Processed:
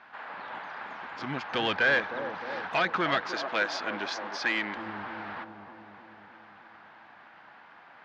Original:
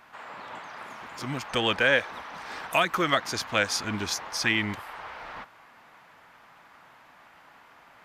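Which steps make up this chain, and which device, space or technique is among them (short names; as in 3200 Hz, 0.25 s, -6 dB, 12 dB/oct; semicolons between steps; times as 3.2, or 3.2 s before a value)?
analogue delay pedal into a guitar amplifier (analogue delay 0.308 s, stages 2048, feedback 64%, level -9.5 dB; tube stage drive 22 dB, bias 0.4; speaker cabinet 91–4500 Hz, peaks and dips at 120 Hz -7 dB, 800 Hz +4 dB, 1600 Hz +6 dB); 3.28–4.77 HPF 290 Hz 12 dB/oct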